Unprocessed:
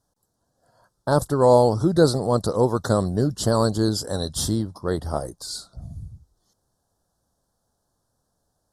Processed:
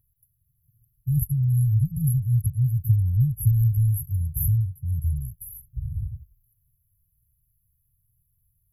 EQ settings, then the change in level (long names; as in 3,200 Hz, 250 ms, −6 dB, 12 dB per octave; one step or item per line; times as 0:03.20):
linear-phase brick-wall band-stop 150–11,000 Hz
high-shelf EQ 6,800 Hz +6.5 dB
+7.5 dB